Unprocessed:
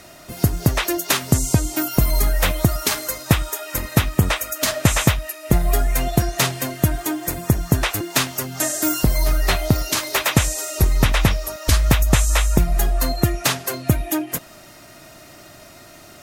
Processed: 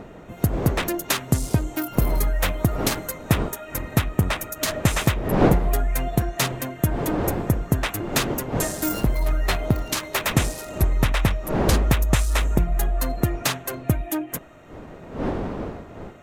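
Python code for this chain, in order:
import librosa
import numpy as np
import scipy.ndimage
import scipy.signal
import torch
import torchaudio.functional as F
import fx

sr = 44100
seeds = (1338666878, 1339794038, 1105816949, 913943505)

y = fx.wiener(x, sr, points=9)
y = fx.dmg_wind(y, sr, seeds[0], corner_hz=470.0, level_db=-27.0)
y = y * 10.0 ** (-3.5 / 20.0)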